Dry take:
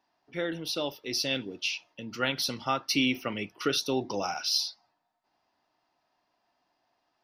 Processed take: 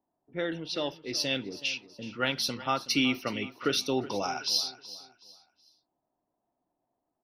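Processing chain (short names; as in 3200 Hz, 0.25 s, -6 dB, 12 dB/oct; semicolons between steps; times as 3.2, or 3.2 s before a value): low-pass opened by the level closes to 520 Hz, open at -26 dBFS; feedback echo 0.373 s, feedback 33%, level -16.5 dB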